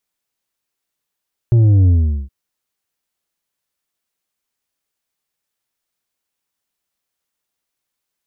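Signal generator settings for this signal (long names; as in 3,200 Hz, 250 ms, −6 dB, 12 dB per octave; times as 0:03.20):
bass drop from 120 Hz, over 0.77 s, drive 6 dB, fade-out 0.41 s, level −8.5 dB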